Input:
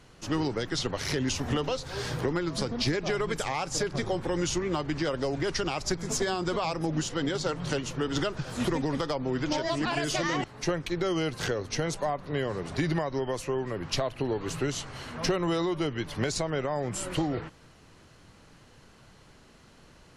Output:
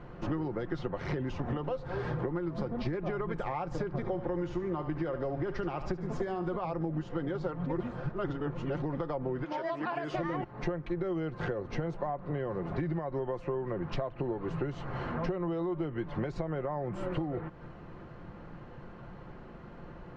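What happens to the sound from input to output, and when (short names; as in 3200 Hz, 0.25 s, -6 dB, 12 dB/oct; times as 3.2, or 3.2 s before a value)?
3.94–6.54 thinning echo 72 ms, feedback 47%, level -11 dB
7.66–8.82 reverse
9.43–10.14 HPF 1100 Hz -> 390 Hz 6 dB/oct
whole clip: LPF 1300 Hz 12 dB/oct; comb 5.7 ms, depth 37%; compressor, threshold -40 dBFS; gain +8.5 dB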